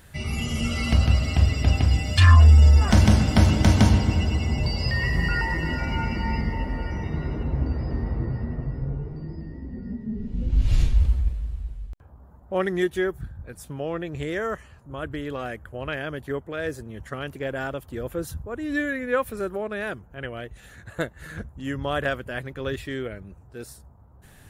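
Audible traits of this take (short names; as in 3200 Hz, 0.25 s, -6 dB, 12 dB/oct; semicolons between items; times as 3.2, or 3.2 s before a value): noise floor -50 dBFS; spectral tilt -6.0 dB/oct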